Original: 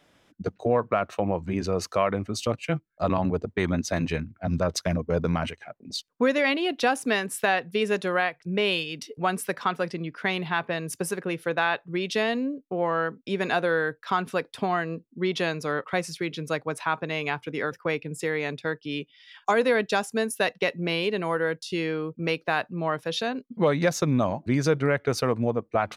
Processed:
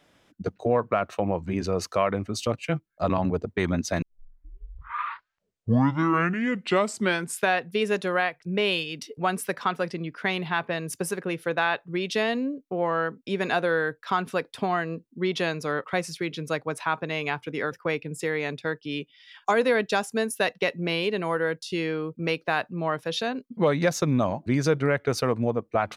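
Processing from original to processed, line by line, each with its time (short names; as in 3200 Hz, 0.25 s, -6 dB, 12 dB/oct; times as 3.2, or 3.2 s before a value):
4.02 tape start 3.61 s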